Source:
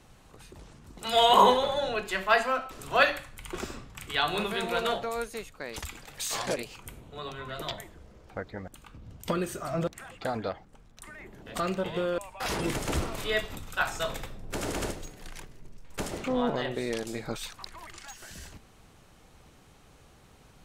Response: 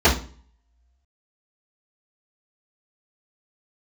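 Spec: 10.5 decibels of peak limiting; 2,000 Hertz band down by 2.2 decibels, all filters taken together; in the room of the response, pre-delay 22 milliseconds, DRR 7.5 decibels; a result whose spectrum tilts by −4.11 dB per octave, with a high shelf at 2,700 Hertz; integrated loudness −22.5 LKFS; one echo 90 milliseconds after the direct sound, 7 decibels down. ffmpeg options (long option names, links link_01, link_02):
-filter_complex "[0:a]equalizer=frequency=2000:width_type=o:gain=-6.5,highshelf=frequency=2700:gain=8,alimiter=limit=-17dB:level=0:latency=1,aecho=1:1:90:0.447,asplit=2[link_01][link_02];[1:a]atrim=start_sample=2205,adelay=22[link_03];[link_02][link_03]afir=irnorm=-1:irlink=0,volume=-29.5dB[link_04];[link_01][link_04]amix=inputs=2:normalize=0,volume=7dB"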